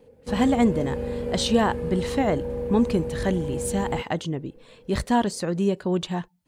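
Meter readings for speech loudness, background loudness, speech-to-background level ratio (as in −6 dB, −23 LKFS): −25.5 LKFS, −30.5 LKFS, 5.0 dB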